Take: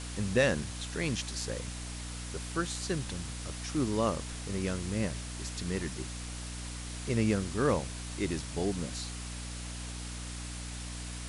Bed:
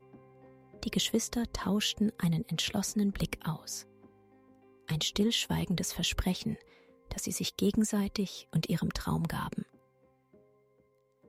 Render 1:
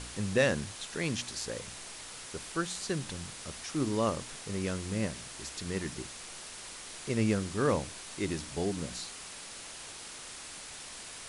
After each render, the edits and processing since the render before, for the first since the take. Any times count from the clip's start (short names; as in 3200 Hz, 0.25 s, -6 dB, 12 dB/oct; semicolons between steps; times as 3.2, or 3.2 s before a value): de-hum 60 Hz, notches 5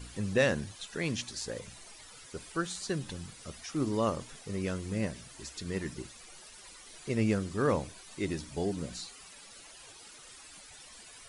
denoiser 13 dB, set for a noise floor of -46 dBFS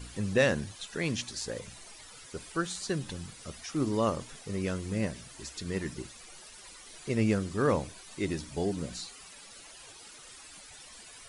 gain +1.5 dB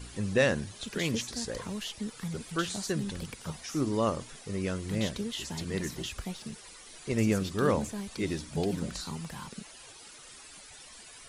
add bed -7.5 dB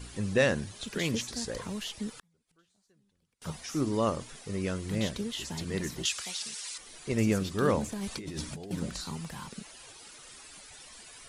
2.18–3.42 flipped gate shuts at -35 dBFS, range -37 dB; 6.05–6.78 weighting filter ITU-R 468; 7.92–8.71 negative-ratio compressor -38 dBFS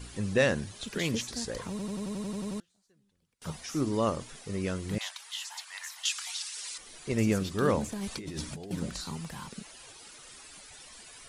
1.7 stutter in place 0.09 s, 10 plays; 4.98–6.57 steep high-pass 790 Hz 48 dB/oct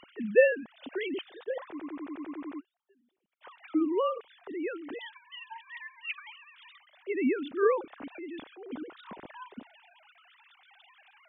sine-wave speech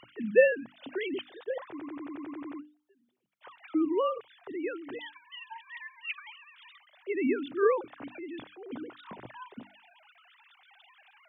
bell 120 Hz +14.5 dB 0.41 oct; notches 50/100/150/200/250/300 Hz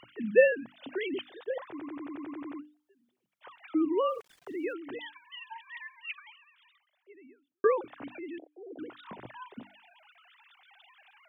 4.08–4.73 sample gate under -55.5 dBFS; 5.83–7.64 fade out quadratic; 8.38–8.79 elliptic band-pass 310–700 Hz